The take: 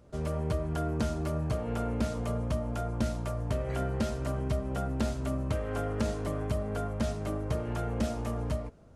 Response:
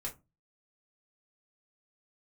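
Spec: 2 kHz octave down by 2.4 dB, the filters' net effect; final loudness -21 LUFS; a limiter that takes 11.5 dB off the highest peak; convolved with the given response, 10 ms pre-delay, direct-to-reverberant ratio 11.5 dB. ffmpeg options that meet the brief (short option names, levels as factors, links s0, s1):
-filter_complex "[0:a]equalizer=f=2000:t=o:g=-3.5,alimiter=level_in=2:limit=0.0631:level=0:latency=1,volume=0.501,asplit=2[s0][s1];[1:a]atrim=start_sample=2205,adelay=10[s2];[s1][s2]afir=irnorm=-1:irlink=0,volume=0.282[s3];[s0][s3]amix=inputs=2:normalize=0,volume=7.5"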